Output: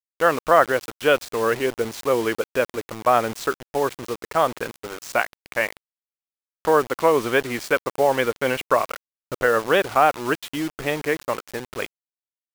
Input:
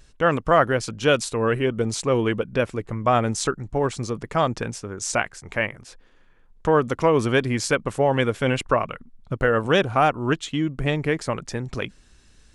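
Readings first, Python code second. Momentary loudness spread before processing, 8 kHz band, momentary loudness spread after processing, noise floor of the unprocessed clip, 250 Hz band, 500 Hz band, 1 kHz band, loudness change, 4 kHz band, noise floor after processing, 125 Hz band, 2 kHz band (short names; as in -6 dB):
10 LU, -4.0 dB, 12 LU, -55 dBFS, -4.0 dB, +1.0 dB, +2.5 dB, +0.5 dB, -1.5 dB, under -85 dBFS, -11.0 dB, +2.0 dB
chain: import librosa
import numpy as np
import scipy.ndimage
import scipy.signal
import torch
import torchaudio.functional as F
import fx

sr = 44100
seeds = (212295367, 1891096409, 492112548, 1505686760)

y = fx.bass_treble(x, sr, bass_db=-15, treble_db=-14)
y = fx.quant_dither(y, sr, seeds[0], bits=6, dither='none')
y = F.gain(torch.from_numpy(y), 2.5).numpy()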